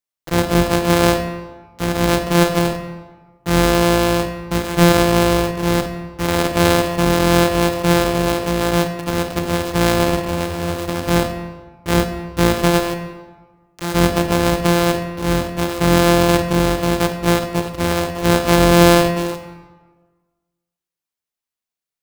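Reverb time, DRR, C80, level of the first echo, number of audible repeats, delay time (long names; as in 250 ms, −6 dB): 1.4 s, 7.0 dB, 10.0 dB, no echo audible, no echo audible, no echo audible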